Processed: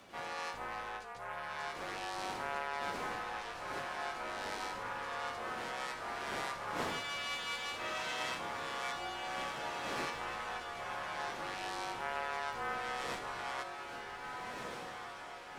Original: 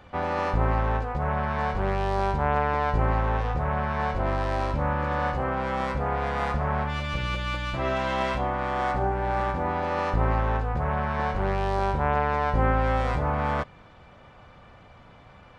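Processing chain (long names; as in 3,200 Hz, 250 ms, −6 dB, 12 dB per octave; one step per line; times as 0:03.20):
wind on the microphone 400 Hz −30 dBFS
first difference
feedback delay with all-pass diffusion 1,695 ms, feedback 51%, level −6 dB
frequency shifter −37 Hz
level +3.5 dB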